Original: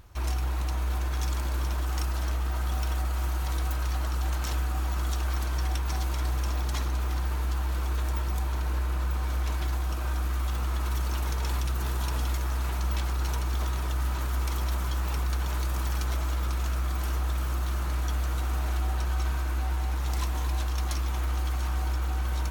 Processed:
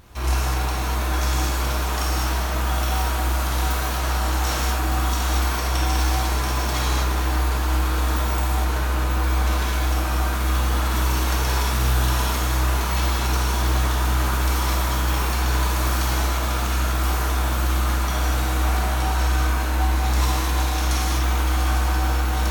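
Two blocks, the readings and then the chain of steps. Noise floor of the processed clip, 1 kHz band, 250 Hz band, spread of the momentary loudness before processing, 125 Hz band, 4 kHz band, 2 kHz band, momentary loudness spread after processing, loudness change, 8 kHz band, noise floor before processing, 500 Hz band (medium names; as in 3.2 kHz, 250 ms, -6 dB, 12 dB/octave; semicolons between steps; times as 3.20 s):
-23 dBFS, +12.0 dB, +11.0 dB, 1 LU, +6.0 dB, +12.0 dB, +12.0 dB, 2 LU, +7.5 dB, +12.0 dB, -29 dBFS, +11.5 dB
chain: bass shelf 95 Hz -6 dB; gated-style reverb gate 270 ms flat, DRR -6.5 dB; trim +4.5 dB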